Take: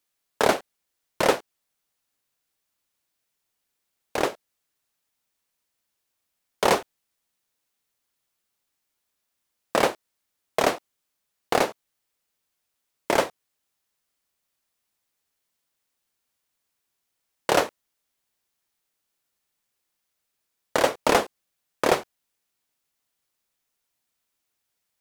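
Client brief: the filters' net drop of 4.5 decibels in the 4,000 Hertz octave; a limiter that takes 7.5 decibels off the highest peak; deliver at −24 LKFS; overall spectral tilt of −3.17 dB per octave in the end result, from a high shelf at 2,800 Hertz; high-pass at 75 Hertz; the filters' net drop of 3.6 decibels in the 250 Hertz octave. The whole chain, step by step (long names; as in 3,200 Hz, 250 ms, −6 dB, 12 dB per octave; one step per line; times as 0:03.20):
high-pass filter 75 Hz
parametric band 250 Hz −5 dB
high-shelf EQ 2,800 Hz −3.5 dB
parametric band 4,000 Hz −3 dB
level +6.5 dB
brickwall limiter −7 dBFS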